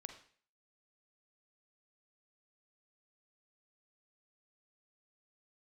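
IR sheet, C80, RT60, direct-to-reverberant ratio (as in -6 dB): 12.0 dB, 0.50 s, 6.0 dB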